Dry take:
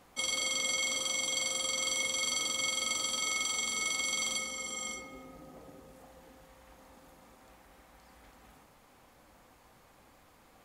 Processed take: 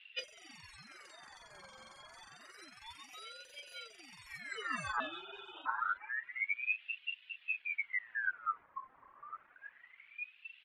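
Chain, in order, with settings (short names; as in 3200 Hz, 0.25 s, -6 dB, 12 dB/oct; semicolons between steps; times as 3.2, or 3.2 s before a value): 5–5.66 inverted band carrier 2700 Hz; low-pass opened by the level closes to 1400 Hz, open at -31.5 dBFS; compressor 12:1, threshold -38 dBFS, peak gain reduction 10 dB; spectral noise reduction 19 dB; sine folder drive 14 dB, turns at -26 dBFS; air absorption 55 m; speakerphone echo 0.32 s, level -14 dB; reverb removal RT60 0.78 s; tilt -4 dB/oct; ring modulator with a swept carrier 1900 Hz, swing 45%, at 0.28 Hz; gain -2.5 dB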